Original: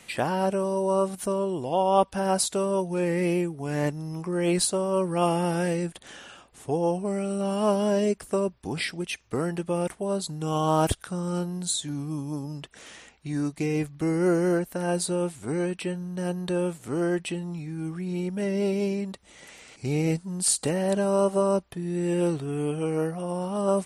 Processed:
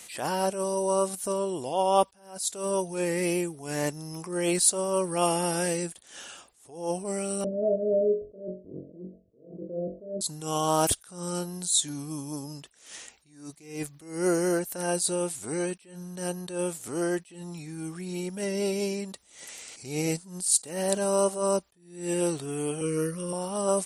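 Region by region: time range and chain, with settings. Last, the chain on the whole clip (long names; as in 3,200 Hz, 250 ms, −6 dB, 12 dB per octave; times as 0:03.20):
0:07.44–0:10.21: Chebyshev low-pass filter 660 Hz, order 10 + flutter between parallel walls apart 3.7 metres, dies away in 0.34 s + multiband upward and downward compressor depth 40%
0:22.81–0:23.33: Butterworth band-reject 760 Hz, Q 1.4 + low-shelf EQ 140 Hz +10.5 dB
whole clip: bass and treble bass −6 dB, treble +12 dB; level that may rise only so fast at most 110 dB per second; level −1 dB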